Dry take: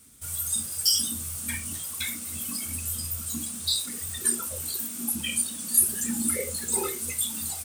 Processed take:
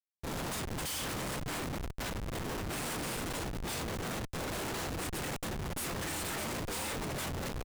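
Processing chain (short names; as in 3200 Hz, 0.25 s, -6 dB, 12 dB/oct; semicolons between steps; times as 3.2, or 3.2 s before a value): 3.84–5.78 negative-ratio compressor -30 dBFS, ratio -0.5; early reflections 23 ms -10 dB, 38 ms -6 dB; spectral gate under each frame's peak -15 dB weak; frequency-shifting echo 93 ms, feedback 48%, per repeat +38 Hz, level -14.5 dB; Schmitt trigger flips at -33 dBFS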